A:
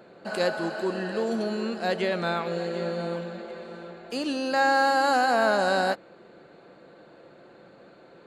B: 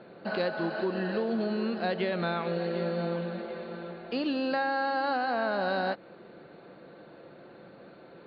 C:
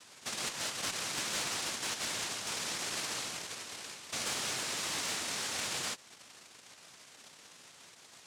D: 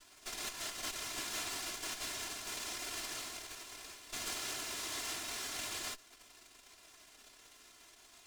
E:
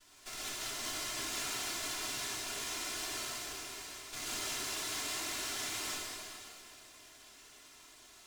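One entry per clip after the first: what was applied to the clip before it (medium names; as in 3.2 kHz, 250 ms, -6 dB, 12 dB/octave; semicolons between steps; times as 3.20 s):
steep low-pass 4.4 kHz 48 dB/octave; peaking EQ 170 Hz +3 dB 1.8 oct; compression, threshold -26 dBFS, peak gain reduction 8.5 dB
peak limiter -23 dBFS, peak gain reduction 6 dB; noise-vocoded speech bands 1; one-sided clip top -25.5 dBFS; trim -5.5 dB
comb filter that takes the minimum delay 2.9 ms; reverse; upward compressor, threshold -52 dBFS; reverse; trim -3.5 dB
plate-style reverb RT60 2.7 s, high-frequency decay 0.95×, DRR -5.5 dB; trim -4 dB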